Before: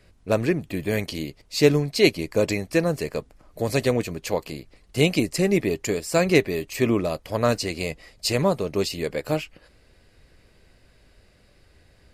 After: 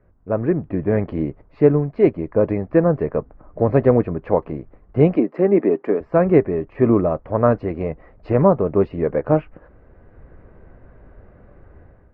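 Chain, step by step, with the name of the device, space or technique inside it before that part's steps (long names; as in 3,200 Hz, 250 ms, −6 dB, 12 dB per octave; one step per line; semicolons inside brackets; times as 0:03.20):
0:05.16–0:06.01: high-pass filter 220 Hz 24 dB per octave
action camera in a waterproof case (low-pass filter 1,400 Hz 24 dB per octave; automatic gain control gain up to 12.5 dB; level −1 dB; AAC 128 kbit/s 48,000 Hz)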